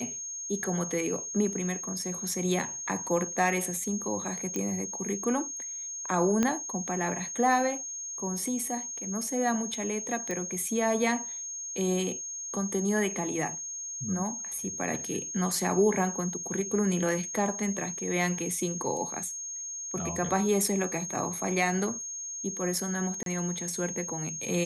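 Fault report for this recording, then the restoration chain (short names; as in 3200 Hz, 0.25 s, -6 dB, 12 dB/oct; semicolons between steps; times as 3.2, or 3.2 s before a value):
tone 6500 Hz -35 dBFS
4.56 pop -18 dBFS
6.43 pop -13 dBFS
10.31 pop -20 dBFS
23.23–23.26 gap 32 ms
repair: de-click; notch 6500 Hz, Q 30; interpolate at 23.23, 32 ms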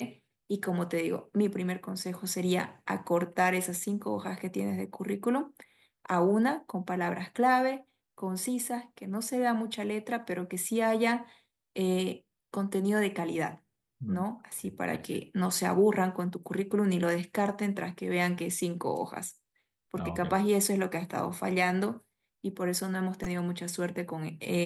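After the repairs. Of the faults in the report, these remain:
6.43 pop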